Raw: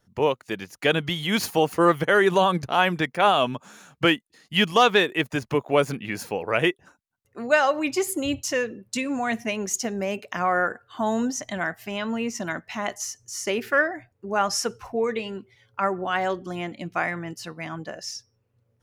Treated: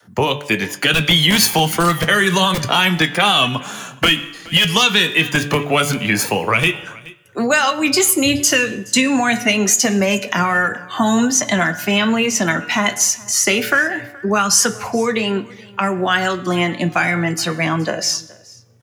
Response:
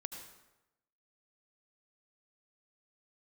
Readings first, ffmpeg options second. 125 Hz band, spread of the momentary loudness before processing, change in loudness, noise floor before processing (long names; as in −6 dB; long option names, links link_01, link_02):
+11.0 dB, 14 LU, +8.5 dB, −71 dBFS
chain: -filter_complex "[0:a]highpass=frequency=100:width=0.5412,highpass=frequency=100:width=1.3066,bandreject=frequency=5500:width=21,bandreject=frequency=145.1:width_type=h:width=4,bandreject=frequency=290.2:width_type=h:width=4,bandreject=frequency=435.3:width_type=h:width=4,bandreject=frequency=580.4:width_type=h:width=4,bandreject=frequency=725.5:width_type=h:width=4,bandreject=frequency=870.6:width_type=h:width=4,bandreject=frequency=1015.7:width_type=h:width=4,bandreject=frequency=1160.8:width_type=h:width=4,bandreject=frequency=1305.9:width_type=h:width=4,bandreject=frequency=1451:width_type=h:width=4,bandreject=frequency=1596.1:width_type=h:width=4,bandreject=frequency=1741.2:width_type=h:width=4,bandreject=frequency=1886.3:width_type=h:width=4,bandreject=frequency=2031.4:width_type=h:width=4,bandreject=frequency=2176.5:width_type=h:width=4,bandreject=frequency=2321.6:width_type=h:width=4,bandreject=frequency=2466.7:width_type=h:width=4,bandreject=frequency=2611.8:width_type=h:width=4,bandreject=frequency=2756.9:width_type=h:width=4,bandreject=frequency=2902:width_type=h:width=4,bandreject=frequency=3047.1:width_type=h:width=4,bandreject=frequency=3192.2:width_type=h:width=4,bandreject=frequency=3337.3:width_type=h:width=4,bandreject=frequency=3482.4:width_type=h:width=4,bandreject=frequency=3627.5:width_type=h:width=4,bandreject=frequency=3772.6:width_type=h:width=4,bandreject=frequency=3917.7:width_type=h:width=4,bandreject=frequency=4062.8:width_type=h:width=4,adynamicequalizer=threshold=0.0126:dfrequency=140:dqfactor=0.96:tfrequency=140:tqfactor=0.96:attack=5:release=100:ratio=0.375:range=1.5:mode=cutabove:tftype=bell,acrossover=split=190|960[link_01][link_02][link_03];[link_01]aeval=exprs='(mod(31.6*val(0)+1,2)-1)/31.6':channel_layout=same[link_04];[link_02]acompressor=threshold=-34dB:ratio=6[link_05];[link_03]aphaser=in_gain=1:out_gain=1:delay=3:decay=0.49:speed=0.13:type=triangular[link_06];[link_04][link_05][link_06]amix=inputs=3:normalize=0,acrossover=split=330|3000[link_07][link_08][link_09];[link_08]acompressor=threshold=-32dB:ratio=6[link_10];[link_07][link_10][link_09]amix=inputs=3:normalize=0,flanger=delay=9.7:depth=1.6:regen=-71:speed=0.27:shape=sinusoidal,aecho=1:1:422:0.0668,asplit=2[link_11][link_12];[1:a]atrim=start_sample=2205,adelay=19[link_13];[link_12][link_13]afir=irnorm=-1:irlink=0,volume=-14dB[link_14];[link_11][link_14]amix=inputs=2:normalize=0,alimiter=level_in=22dB:limit=-1dB:release=50:level=0:latency=1,volume=-1.5dB"